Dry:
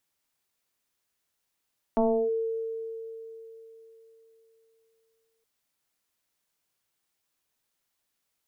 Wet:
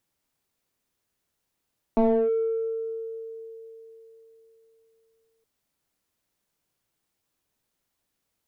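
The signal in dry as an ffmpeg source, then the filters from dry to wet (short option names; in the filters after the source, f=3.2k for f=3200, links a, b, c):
-f lavfi -i "aevalsrc='0.112*pow(10,-3*t/3.71)*sin(2*PI*451*t+1.8*clip(1-t/0.33,0,1)*sin(2*PI*0.49*451*t))':d=3.47:s=44100"
-filter_complex "[0:a]tiltshelf=f=630:g=4.5,asplit=2[a][b];[b]asoftclip=type=tanh:threshold=-29dB,volume=-5.5dB[c];[a][c]amix=inputs=2:normalize=0"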